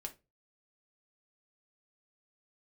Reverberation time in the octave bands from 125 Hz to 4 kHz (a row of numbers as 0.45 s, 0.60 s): 0.45 s, 0.30 s, 0.30 s, 0.20 s, 0.20 s, 0.20 s